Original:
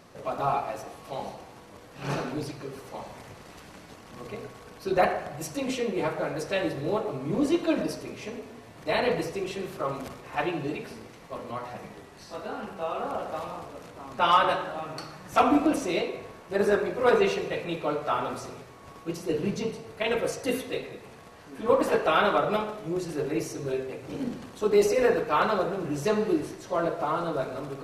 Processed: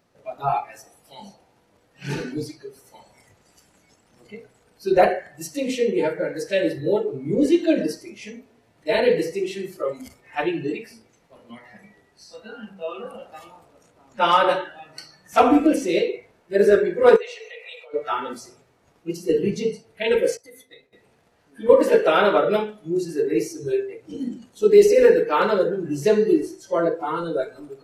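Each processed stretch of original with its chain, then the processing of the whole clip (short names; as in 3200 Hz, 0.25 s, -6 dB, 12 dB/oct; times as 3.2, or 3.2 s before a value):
17.16–17.94 brick-wall FIR high-pass 410 Hz + compressor 5:1, threshold -34 dBFS
20.37–20.93 expander -31 dBFS + notch 2800 Hz, Q 7.7 + compressor 10:1, threshold -36 dBFS
whole clip: notch 1100 Hz, Q 11; spectral noise reduction 16 dB; dynamic EQ 460 Hz, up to +6 dB, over -35 dBFS, Q 1.2; gain +3.5 dB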